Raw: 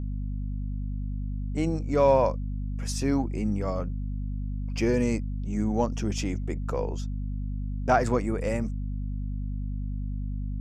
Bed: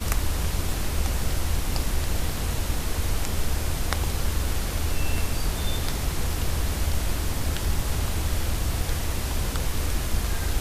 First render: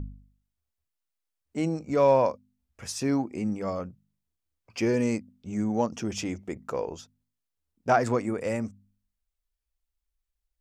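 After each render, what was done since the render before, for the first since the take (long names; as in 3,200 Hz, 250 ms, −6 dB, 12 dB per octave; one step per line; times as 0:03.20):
hum removal 50 Hz, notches 5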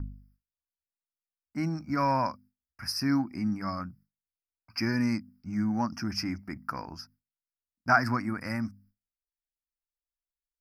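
noise gate with hold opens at −54 dBFS
drawn EQ curve 290 Hz 0 dB, 460 Hz −22 dB, 650 Hz −7 dB, 1,500 Hz +8 dB, 2,300 Hz −1 dB, 3,500 Hz −24 dB, 5,000 Hz +11 dB, 7,200 Hz −21 dB, 11,000 Hz +7 dB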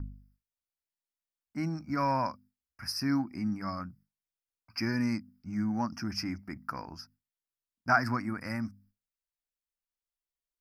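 level −2.5 dB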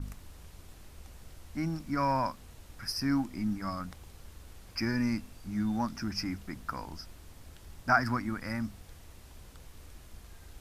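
mix in bed −24.5 dB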